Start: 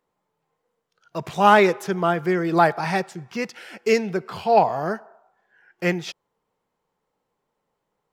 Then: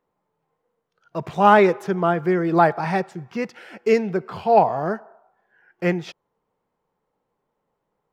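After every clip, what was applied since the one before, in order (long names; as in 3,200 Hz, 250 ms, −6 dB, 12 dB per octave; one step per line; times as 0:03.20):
high-shelf EQ 2,700 Hz −11.5 dB
level +2 dB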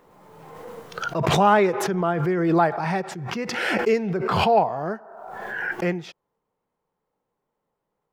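background raised ahead of every attack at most 29 dB per second
level −4 dB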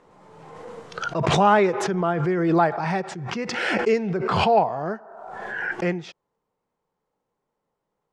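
low-pass filter 8,600 Hz 24 dB per octave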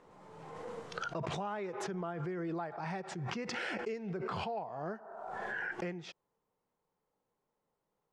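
downward compressor 12 to 1, threshold −30 dBFS, peak gain reduction 18 dB
level −5 dB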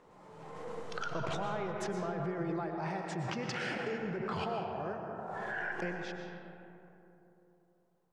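convolution reverb RT60 3.1 s, pre-delay 80 ms, DRR 3 dB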